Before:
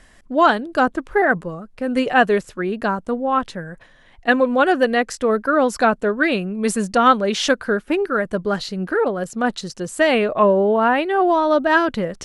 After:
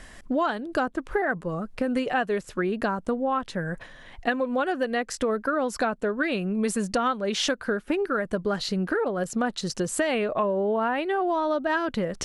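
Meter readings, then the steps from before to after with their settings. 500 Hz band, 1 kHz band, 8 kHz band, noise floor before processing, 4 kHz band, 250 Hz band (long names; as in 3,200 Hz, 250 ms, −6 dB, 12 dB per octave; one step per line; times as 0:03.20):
−8.0 dB, −9.5 dB, −2.5 dB, −50 dBFS, −5.5 dB, −6.5 dB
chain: downward compressor 6 to 1, threshold −28 dBFS, peak gain reduction 18.5 dB
level +4.5 dB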